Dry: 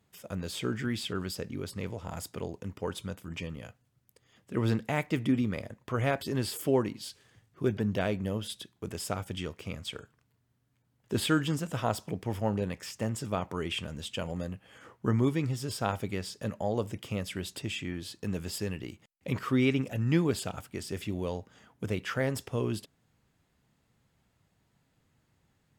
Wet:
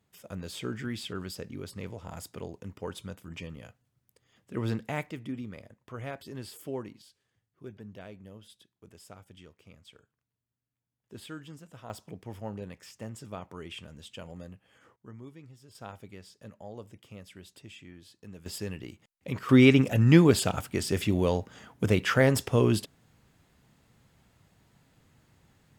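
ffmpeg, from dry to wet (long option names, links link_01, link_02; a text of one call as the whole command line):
ffmpeg -i in.wav -af "asetnsamples=nb_out_samples=441:pad=0,asendcmd='5.11 volume volume -10dB;7.02 volume volume -16dB;11.9 volume volume -8.5dB;14.96 volume volume -20dB;15.75 volume volume -13dB;18.46 volume volume -2dB;19.49 volume volume 8dB',volume=-3dB" out.wav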